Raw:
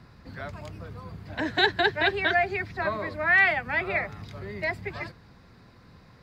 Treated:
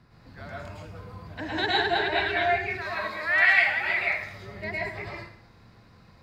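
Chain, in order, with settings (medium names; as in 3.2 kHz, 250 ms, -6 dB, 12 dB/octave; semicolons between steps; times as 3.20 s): 2.70–4.24 s: tilt shelf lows -8.5 dB, about 1.2 kHz; plate-style reverb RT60 0.61 s, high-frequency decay 0.95×, pre-delay 95 ms, DRR -5.5 dB; trim -7 dB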